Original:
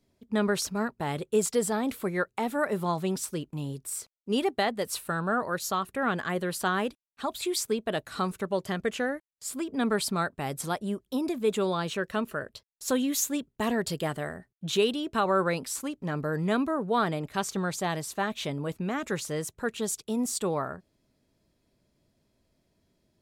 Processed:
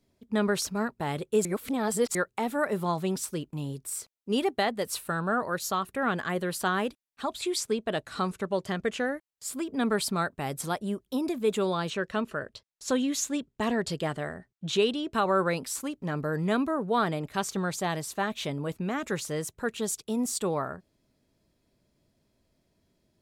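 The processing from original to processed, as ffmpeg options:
-filter_complex "[0:a]asettb=1/sr,asplit=3[s0][s1][s2];[s0]atrim=end=7.244[s3];[s1]atrim=start=7.24:end=9.05,asetpts=PTS-STARTPTS,afade=t=in:d=0.004:c=qsin,afade=t=out:st=1.806:d=0.004:c=qsin,lowpass=9700[s4];[s2]atrim=start=9.046[s5];[s3][s4]acrossfade=d=0.004:c1=hsin:c2=qsin[s6];[s6][s5]acrossfade=d=0.004:c1=qsin:c2=hsin,asettb=1/sr,asplit=3[s7][s8][s9];[s7]atrim=end=11.904[s10];[s8]atrim=start=11.9:end=15.13,asetpts=PTS-STARTPTS,afade=t=in:d=0.004:c=qsin,afade=t=out:st=3.226:d=0.004:c=qsin,lowpass=7700[s11];[s9]atrim=start=15.126[s12];[s10][s11]acrossfade=d=0.004:c1=hsin:c2=qsin[s13];[s13][s12]acrossfade=d=0.004:c1=qsin:c2=hsin,asplit=3[s14][s15][s16];[s14]atrim=end=1.452[s17];[s15]atrim=start=1.448:end=2.152,asetpts=PTS-STARTPTS,areverse[s18];[s16]atrim=start=2.148[s19];[s17][s18]acrossfade=d=0.004:c1=hsin:c2=hsin[s20];[s20][s19]acrossfade=d=0.004:c1=hsin:c2=hsin"

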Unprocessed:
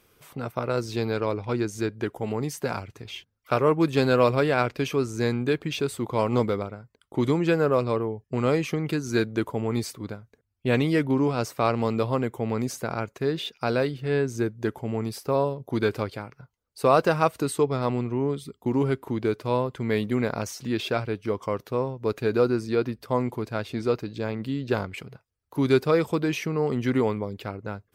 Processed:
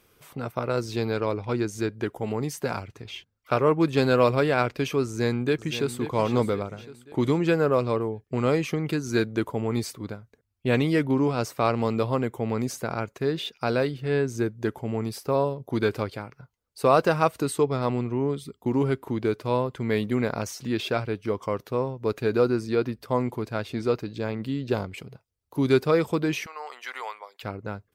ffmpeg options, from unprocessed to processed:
-filter_complex "[0:a]asettb=1/sr,asplit=3[s0][s1][s2];[s0]atrim=end=2.884[s3];[s1]atrim=start=2.88:end=3.98,asetpts=PTS-STARTPTS,afade=t=in:d=0.004:c=qsin,afade=t=out:st=1.096:d=0.004:c=qsin,highshelf=f=9200:g=-6[s4];[s2]atrim=start=3.976[s5];[s3][s4]acrossfade=d=0.004:c1=hsin:c2=qsin[s6];[s6][s5]acrossfade=d=0.004:c1=qsin:c2=hsin,asplit=2[s7][s8];[s8]afade=t=in:st=5.05:d=0.01,afade=t=out:st=5.98:d=0.01,aecho=0:1:530|1060|1590|2120|2650:0.266073|0.119733|0.0538797|0.0242459|0.0109106[s9];[s7][s9]amix=inputs=2:normalize=0,asettb=1/sr,asplit=3[s10][s11][s12];[s10]atrim=end=24.704[s13];[s11]atrim=start=24.7:end=25.68,asetpts=PTS-STARTPTS,afade=t=in:d=0.004:c=qsin,afade=t=out:st=0.976:d=0.004:c=qsin,equalizer=f=1600:t=o:w=1.2:g=-5.5[s14];[s12]atrim=start=25.676[s15];[s13][s14]acrossfade=d=0.004:c1=hsin:c2=qsin[s16];[s16][s15]acrossfade=d=0.004:c1=qsin:c2=hsin,asettb=1/sr,asplit=3[s17][s18][s19];[s17]atrim=end=26.464[s20];[s18]atrim=start=26.46:end=27.43,asetpts=PTS-STARTPTS,afade=t=in:d=0.004:c=qsin,afade=t=out:st=0.966:d=0.004:c=qsin,highpass=f=780:w=0.5412,highpass=f=780:w=1.3066[s21];[s19]atrim=start=27.426[s22];[s20][s21]acrossfade=d=0.004:c1=hsin:c2=qsin[s23];[s23][s22]acrossfade=d=0.004:c1=qsin:c2=hsin"

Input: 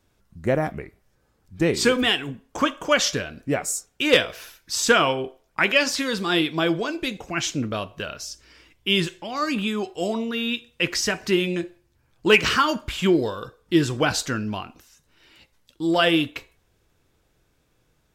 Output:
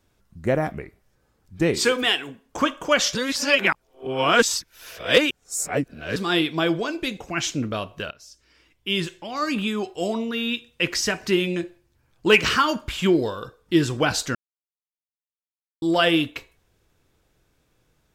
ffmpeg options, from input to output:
-filter_complex "[0:a]asettb=1/sr,asplit=3[s0][s1][s2];[s0]atrim=end=1.794[s3];[s1]atrim=start=1.79:end=2.46,asetpts=PTS-STARTPTS,afade=t=in:d=0.004:c=qsin,afade=t=out:st=0.666:d=0.004:c=qsin,bass=f=250:g=-12,treble=f=4000:g=1[s4];[s2]atrim=start=2.456[s5];[s3][s4]acrossfade=d=0.004:c1=hsin:c2=qsin[s6];[s6][s5]acrossfade=d=0.004:c1=qsin:c2=hsin,asplit=6[s7][s8][s9][s10][s11][s12];[s7]atrim=end=3.152[s13];[s8]atrim=start=3.148:end=6.162,asetpts=PTS-STARTPTS,areverse[s14];[s9]atrim=start=6.158:end=8.11,asetpts=PTS-STARTPTS,afade=t=out:st=1.948:d=0.004:c=hsin:silence=0.16788[s15];[s10]atrim=start=8.11:end=14.35,asetpts=PTS-STARTPTS,afade=t=in:d=1.39:silence=0.16788,afade=t=out:st=6.236:d=0.004:c=hsin[s16];[s11]atrim=start=14.35:end=15.82,asetpts=PTS-STARTPTS,volume=0[s17];[s12]atrim=start=15.82,asetpts=PTS-STARTPTS,afade=t=in:d=0.004:c=hsin[s18];[s13][s14]acrossfade=d=0.004:c1=hsin:c2=hsin[s19];[s15][s16][s17][s18]concat=n=4:v=0:a=1[s20];[s19][s20]acrossfade=d=0.004:c1=hsin:c2=hsin"

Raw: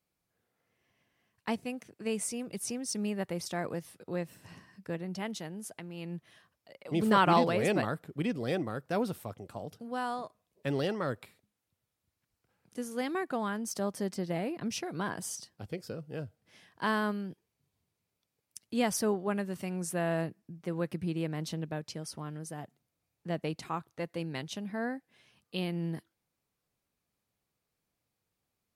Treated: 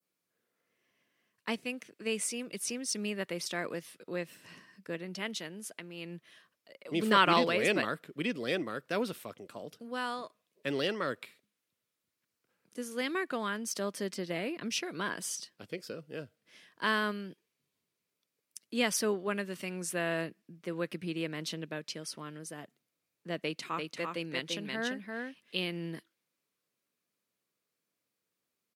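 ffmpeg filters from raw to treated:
-filter_complex "[0:a]asplit=3[s0][s1][s2];[s0]afade=t=out:st=23.71:d=0.02[s3];[s1]aecho=1:1:342:0.631,afade=t=in:st=23.71:d=0.02,afade=t=out:st=25.79:d=0.02[s4];[s2]afade=t=in:st=25.79:d=0.02[s5];[s3][s4][s5]amix=inputs=3:normalize=0,adynamicequalizer=threshold=0.00251:dfrequency=2800:dqfactor=0.77:tfrequency=2800:tqfactor=0.77:attack=5:release=100:ratio=0.375:range=3.5:mode=boostabove:tftype=bell,highpass=230,equalizer=f=790:t=o:w=0.4:g=-9"

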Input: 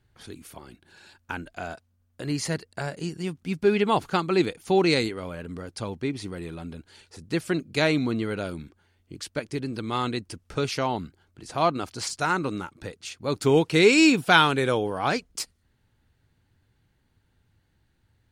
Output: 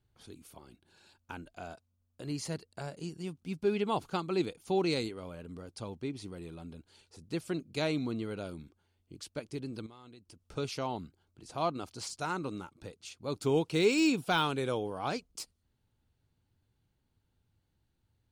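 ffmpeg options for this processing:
-filter_complex "[0:a]asettb=1/sr,asplit=3[s0][s1][s2];[s0]atrim=end=9.864[s3];[s1]atrim=start=9.86:end=10.48,asetpts=PTS-STARTPTS,afade=t=in:d=0.004:c=qsin,afade=t=out:st=0.616:d=0.004:c=qsin,acompressor=threshold=0.00708:ratio=5:attack=3.2:release=140:knee=1:detection=peak[s4];[s2]atrim=start=10.476[s5];[s3][s4]acrossfade=d=0.004:c1=hsin:c2=qsin[s6];[s6][s5]acrossfade=d=0.004:c1=qsin:c2=hsin,deesser=0.5,equalizer=f=1800:w=2.2:g=-7.5,volume=0.376"

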